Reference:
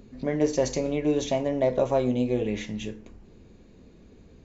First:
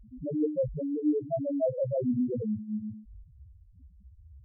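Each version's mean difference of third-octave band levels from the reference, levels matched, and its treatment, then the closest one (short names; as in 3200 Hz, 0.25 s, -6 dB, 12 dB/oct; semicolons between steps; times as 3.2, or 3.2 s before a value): 14.5 dB: bell 79 Hz +9 dB 2 oct; loudest bins only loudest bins 1; gain +2.5 dB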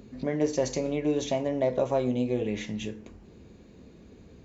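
1.5 dB: HPF 54 Hz; in parallel at -0.5 dB: compressor, threshold -35 dBFS, peak gain reduction 16 dB; on the sum: gain -4 dB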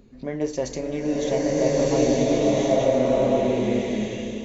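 10.5 dB: bell 110 Hz -4.5 dB 0.28 oct; bloom reverb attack 1.42 s, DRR -7 dB; gain -2.5 dB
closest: second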